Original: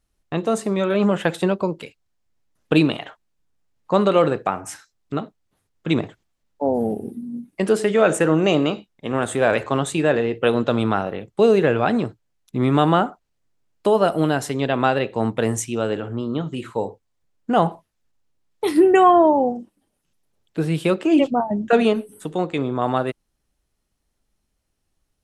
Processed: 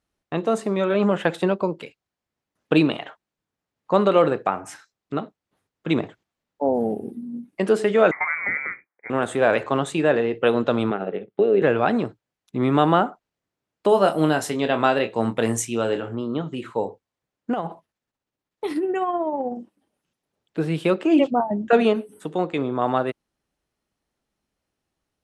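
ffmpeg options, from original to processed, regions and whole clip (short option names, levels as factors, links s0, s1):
-filter_complex "[0:a]asettb=1/sr,asplit=3[s0][s1][s2];[s0]atrim=end=8.114[s3];[s1]atrim=start=8.11:end=9.1,asetpts=PTS-STARTPTS,afade=t=in:d=0.004:c=qsin,afade=t=out:st=0.986:d=0.004:c=qsin,highpass=620,lowpass=f=2200:t=q:w=0.5098,lowpass=f=2200:t=q:w=0.6013,lowpass=f=2200:t=q:w=0.9,lowpass=f=2200:t=q:w=2.563,afreqshift=-2600[s4];[s2]atrim=start=9.096[s5];[s3][s4]acrossfade=d=0.004:c1=hsin:c2=qsin[s6];[s6][s5]acrossfade=d=0.004:c1=qsin:c2=hsin,asettb=1/sr,asplit=3[s7][s8][s9];[s7]atrim=end=10.904[s10];[s8]atrim=start=10.9:end=11.62,asetpts=PTS-STARTPTS,afade=t=in:d=0.004:c=qsin,afade=t=out:st=0.716:d=0.004:c=qsin,acompressor=threshold=0.158:ratio=6:attack=3.2:release=140:knee=1:detection=peak,tremolo=f=110:d=0.75,highpass=150,equalizer=f=190:t=q:w=4:g=6,equalizer=f=410:t=q:w=4:g=10,equalizer=f=1000:t=q:w=4:g=-9,lowpass=f=3600:w=0.5412,lowpass=f=3600:w=1.3066[s11];[s9]atrim=start=11.616[s12];[s10][s11]acrossfade=d=0.004:c1=hsin:c2=qsin[s13];[s13][s12]acrossfade=d=0.004:c1=qsin:c2=hsin,asettb=1/sr,asplit=3[s14][s15][s16];[s14]atrim=end=13.894[s17];[s15]atrim=start=13.89:end=16.15,asetpts=PTS-STARTPTS,afade=t=in:d=0.004:c=qsin,afade=t=out:st=2.256:d=0.004:c=qsin,aemphasis=mode=production:type=cd,asplit=2[s18][s19];[s19]adelay=26,volume=0.376[s20];[s18][s20]amix=inputs=2:normalize=0,atrim=end_sample=99666[s21];[s16]atrim=start=16.146[s22];[s17][s21]acrossfade=d=0.004:c1=hsin:c2=qsin[s23];[s23][s22]acrossfade=d=0.004:c1=qsin:c2=hsin,asettb=1/sr,asplit=3[s24][s25][s26];[s24]atrim=end=17.534[s27];[s25]atrim=start=17.53:end=19.57,asetpts=PTS-STARTPTS,afade=t=in:d=0.004:c=qsin,afade=t=out:st=2.036:d=0.004:c=qsin,acompressor=threshold=0.1:ratio=4:attack=3.2:release=140:knee=1:detection=peak,tremolo=f=16:d=0.41[s28];[s26]atrim=start=19.566[s29];[s27][s28]acrossfade=d=0.004:c1=hsin:c2=qsin[s30];[s30][s29]acrossfade=d=0.004:c1=qsin:c2=hsin,highpass=f=190:p=1,aemphasis=mode=reproduction:type=cd"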